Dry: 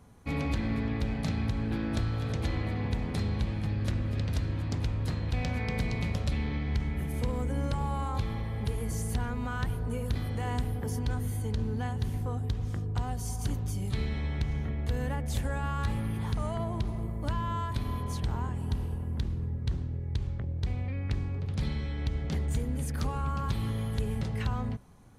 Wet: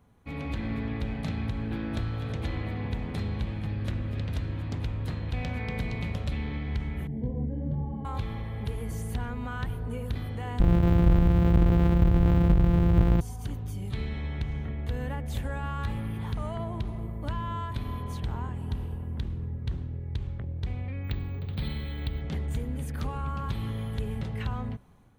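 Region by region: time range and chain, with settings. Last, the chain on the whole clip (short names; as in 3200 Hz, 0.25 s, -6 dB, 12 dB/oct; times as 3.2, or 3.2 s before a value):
7.07–8.05 running mean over 34 samples + bell 180 Hz +9.5 dB 1.6 oct + detuned doubles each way 34 cents
10.6–13.21 sample sorter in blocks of 256 samples + tilt -3.5 dB/oct + fast leveller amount 50%
21.04–22.21 resonant high shelf 5200 Hz -8 dB, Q 3 + careless resampling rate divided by 2×, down filtered, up hold
whole clip: high shelf 5600 Hz +5 dB; AGC gain up to 5 dB; band shelf 7500 Hz -9 dB; gain -6 dB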